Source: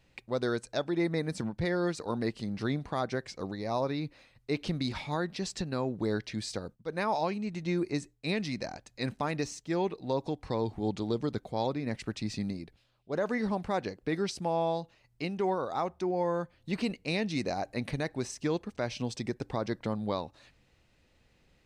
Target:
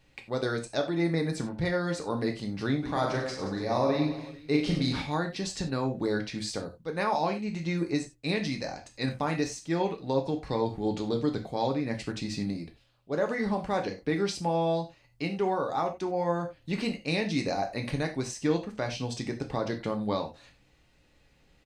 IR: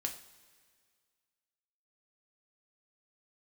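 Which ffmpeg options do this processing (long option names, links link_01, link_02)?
-filter_complex "[0:a]asplit=3[link_01][link_02][link_03];[link_01]afade=type=out:start_time=2.82:duration=0.02[link_04];[link_02]aecho=1:1:40|96|174.4|284.2|437.8:0.631|0.398|0.251|0.158|0.1,afade=type=in:start_time=2.82:duration=0.02,afade=type=out:start_time=5.01:duration=0.02[link_05];[link_03]afade=type=in:start_time=5.01:duration=0.02[link_06];[link_04][link_05][link_06]amix=inputs=3:normalize=0[link_07];[1:a]atrim=start_sample=2205,afade=type=out:start_time=0.15:duration=0.01,atrim=end_sample=7056[link_08];[link_07][link_08]afir=irnorm=-1:irlink=0,volume=2.5dB"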